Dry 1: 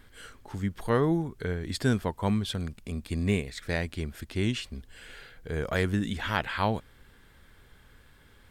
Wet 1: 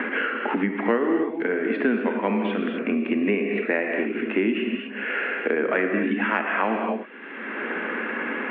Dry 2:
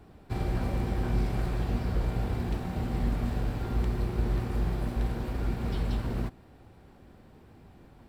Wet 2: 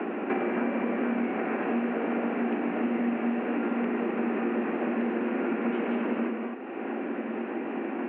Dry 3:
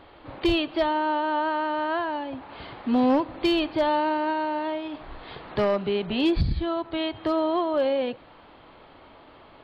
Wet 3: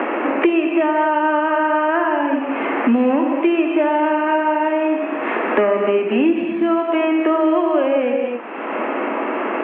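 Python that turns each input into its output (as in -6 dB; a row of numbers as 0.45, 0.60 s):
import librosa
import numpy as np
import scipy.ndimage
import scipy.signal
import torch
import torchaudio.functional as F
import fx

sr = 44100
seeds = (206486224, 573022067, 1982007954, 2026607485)

y = scipy.signal.sosfilt(scipy.signal.cheby1(5, 1.0, [220.0, 2700.0], 'bandpass', fs=sr, output='sos'), x)
y = fx.peak_eq(y, sr, hz=850.0, db=-4.0, octaves=0.95)
y = fx.rev_gated(y, sr, seeds[0], gate_ms=280, shape='flat', drr_db=2.5)
y = fx.band_squash(y, sr, depth_pct=100)
y = y * 10.0 ** (8.0 / 20.0)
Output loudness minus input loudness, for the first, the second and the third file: +5.5, +2.0, +7.5 LU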